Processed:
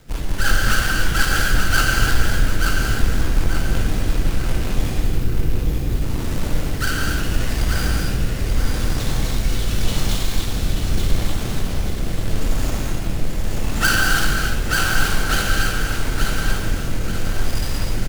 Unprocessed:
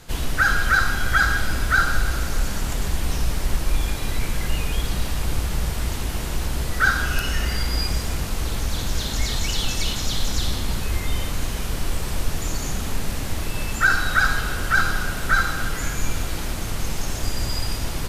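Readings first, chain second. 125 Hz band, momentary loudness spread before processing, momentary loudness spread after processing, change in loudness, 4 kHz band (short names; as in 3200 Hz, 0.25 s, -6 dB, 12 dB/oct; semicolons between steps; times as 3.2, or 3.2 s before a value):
+4.5 dB, 9 LU, 7 LU, +2.0 dB, +2.0 dB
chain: half-waves squared off; rotary speaker horn 5.5 Hz, later 0.8 Hz, at 5.17; spectral delete 5–5.89, 530–11000 Hz; on a send: feedback echo 0.884 s, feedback 39%, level -5 dB; on the sum: non-linear reverb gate 0.32 s flat, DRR -2 dB; gain -4.5 dB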